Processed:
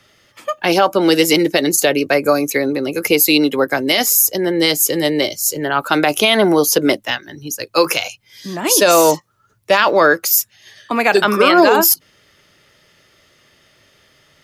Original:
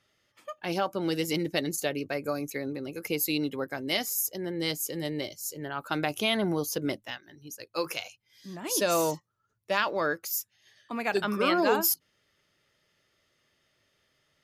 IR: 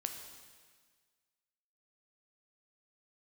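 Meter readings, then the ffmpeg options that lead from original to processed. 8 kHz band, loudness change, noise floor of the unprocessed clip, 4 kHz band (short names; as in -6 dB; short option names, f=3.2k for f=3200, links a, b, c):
+16.5 dB, +15.5 dB, -75 dBFS, +15.5 dB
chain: -filter_complex "[0:a]acrossover=split=250|580|3500[a][b][c][d];[a]acompressor=threshold=-50dB:ratio=6[e];[e][b][c][d]amix=inputs=4:normalize=0,alimiter=level_in=19dB:limit=-1dB:release=50:level=0:latency=1,volume=-1dB"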